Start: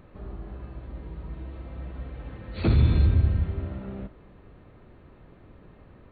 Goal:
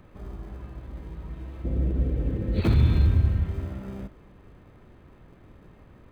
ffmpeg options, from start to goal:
-filter_complex "[0:a]acrossover=split=430|490[a][b][c];[b]acrusher=samples=32:mix=1:aa=0.000001[d];[a][d][c]amix=inputs=3:normalize=0,asettb=1/sr,asplit=3[e][f][g];[e]atrim=end=1.644[h];[f]atrim=start=1.64:end=2.61,asetpts=PTS-STARTPTS,afade=t=in:d=0.004:c=qsin,afade=t=out:st=0.966:d=0.004:c=qsin,lowshelf=f=620:t=q:w=1.5:g=12[i];[g]atrim=start=2.606[j];[h][i]acrossfade=d=0.004:c1=hsin:c2=qsin[k];[k][j]acrossfade=d=0.004:c1=qsin:c2=hsin"

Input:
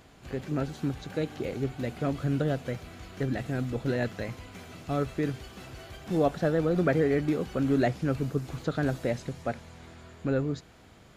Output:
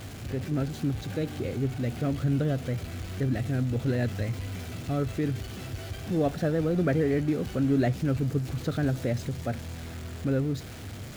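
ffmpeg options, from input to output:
-af "aeval=exprs='val(0)+0.5*0.0141*sgn(val(0))':c=same,equalizer=f=100:t=o:w=0.67:g=12,equalizer=f=250:t=o:w=0.67:g=3,equalizer=f=1k:t=o:w=0.67:g=-5,volume=-2.5dB"

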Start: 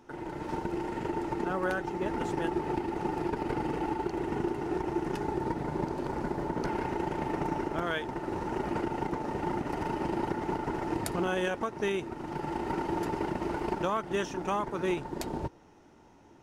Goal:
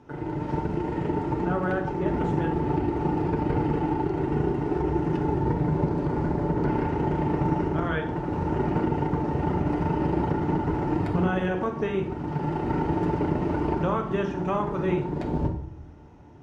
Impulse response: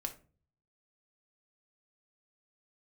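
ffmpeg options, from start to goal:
-filter_complex "[0:a]highpass=66,aemphasis=mode=reproduction:type=bsi,acrossover=split=3400[a][b];[b]acompressor=threshold=-58dB:ratio=4:attack=1:release=60[c];[a][c]amix=inputs=2:normalize=0[d];[1:a]atrim=start_sample=2205,asetrate=23814,aresample=44100[e];[d][e]afir=irnorm=-1:irlink=0"

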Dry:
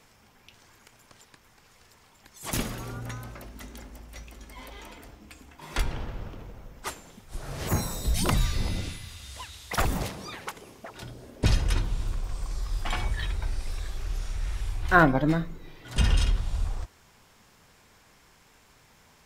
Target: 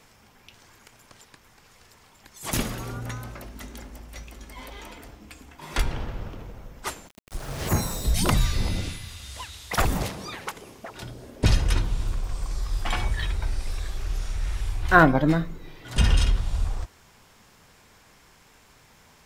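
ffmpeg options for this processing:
-filter_complex "[0:a]asplit=3[a][b][c];[a]afade=t=out:st=7.07:d=0.02[d];[b]aeval=exprs='val(0)*gte(abs(val(0)),0.00841)':c=same,afade=t=in:st=7.07:d=0.02,afade=t=out:st=8.1:d=0.02[e];[c]afade=t=in:st=8.1:d=0.02[f];[d][e][f]amix=inputs=3:normalize=0,volume=3dB"

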